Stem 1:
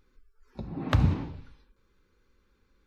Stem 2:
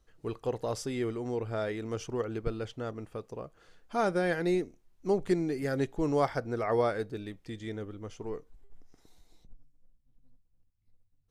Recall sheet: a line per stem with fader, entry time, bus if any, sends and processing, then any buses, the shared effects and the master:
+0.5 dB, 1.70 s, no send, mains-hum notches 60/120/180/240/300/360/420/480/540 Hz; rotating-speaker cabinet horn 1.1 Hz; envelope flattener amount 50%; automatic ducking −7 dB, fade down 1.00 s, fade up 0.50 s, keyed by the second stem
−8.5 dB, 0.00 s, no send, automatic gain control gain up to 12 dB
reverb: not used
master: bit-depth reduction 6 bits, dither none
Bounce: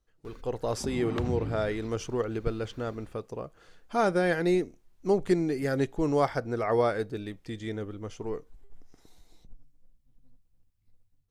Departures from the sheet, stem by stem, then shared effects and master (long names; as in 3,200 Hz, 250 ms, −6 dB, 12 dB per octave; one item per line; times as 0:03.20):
stem 1: entry 1.70 s → 0.25 s
master: missing bit-depth reduction 6 bits, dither none